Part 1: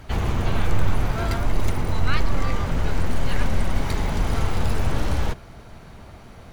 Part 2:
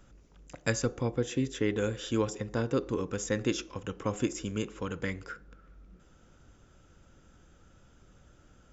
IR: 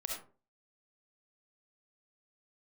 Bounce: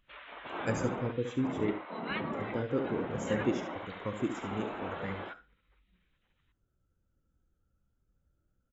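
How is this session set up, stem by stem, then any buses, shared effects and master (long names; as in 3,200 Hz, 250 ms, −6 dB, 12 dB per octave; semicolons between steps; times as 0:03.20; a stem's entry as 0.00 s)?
−4.5 dB, 0.00 s, send −12.5 dB, echo send −16 dB, Butterworth low-pass 3,900 Hz 72 dB per octave; gate on every frequency bin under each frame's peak −25 dB weak
−4.5 dB, 0.00 s, muted 0:01.73–0:02.33, no send, echo send −6.5 dB, no processing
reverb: on, RT60 0.40 s, pre-delay 25 ms
echo: repeating echo 72 ms, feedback 27%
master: every bin expanded away from the loudest bin 1.5 to 1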